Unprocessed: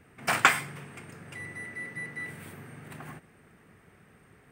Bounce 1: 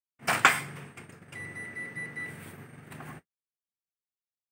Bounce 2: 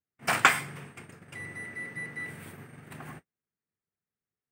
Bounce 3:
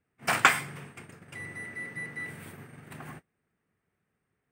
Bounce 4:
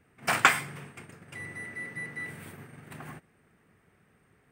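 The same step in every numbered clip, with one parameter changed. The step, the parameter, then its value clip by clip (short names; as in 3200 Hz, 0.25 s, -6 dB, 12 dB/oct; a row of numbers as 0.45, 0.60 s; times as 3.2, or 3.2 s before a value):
gate, range: -57, -39, -22, -7 dB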